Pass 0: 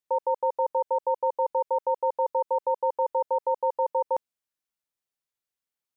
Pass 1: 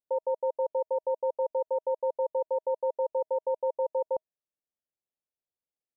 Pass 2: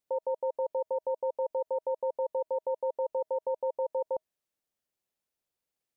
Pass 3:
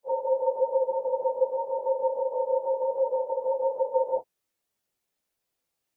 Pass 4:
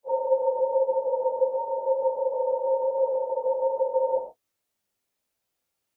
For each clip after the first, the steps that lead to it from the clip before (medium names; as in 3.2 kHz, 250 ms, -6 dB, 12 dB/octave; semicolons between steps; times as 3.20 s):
FFT filter 200 Hz 0 dB, 630 Hz +4 dB, 940 Hz -7 dB, 1.6 kHz -27 dB; trim -4 dB
peak limiter -30.5 dBFS, peak gain reduction 9 dB; trim +6.5 dB
phase randomisation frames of 100 ms; trim +6 dB
gated-style reverb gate 140 ms flat, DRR 4 dB